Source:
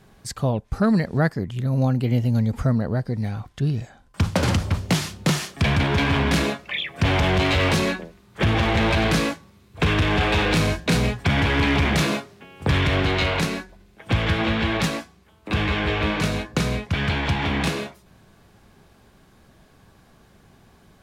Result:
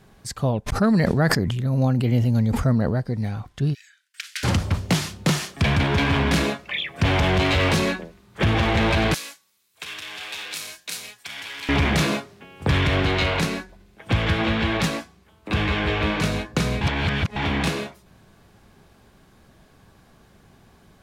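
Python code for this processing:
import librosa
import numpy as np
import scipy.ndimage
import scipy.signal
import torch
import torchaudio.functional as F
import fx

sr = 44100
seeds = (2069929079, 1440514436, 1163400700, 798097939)

y = fx.sustainer(x, sr, db_per_s=27.0, at=(0.66, 2.92), fade=0.02)
y = fx.steep_highpass(y, sr, hz=1600.0, slope=48, at=(3.73, 4.43), fade=0.02)
y = fx.differentiator(y, sr, at=(9.14, 11.69))
y = fx.edit(y, sr, fx.reverse_span(start_s=16.81, length_s=0.55), tone=tone)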